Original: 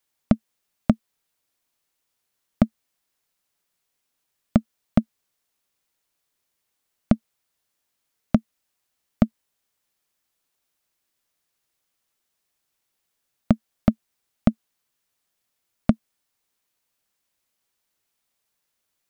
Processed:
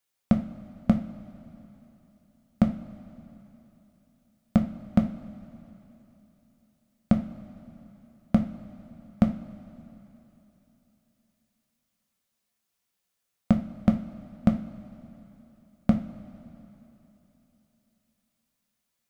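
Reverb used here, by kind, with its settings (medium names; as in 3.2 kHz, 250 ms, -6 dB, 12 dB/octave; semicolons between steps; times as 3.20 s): two-slope reverb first 0.33 s, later 3.4 s, from -18 dB, DRR 3 dB; trim -4.5 dB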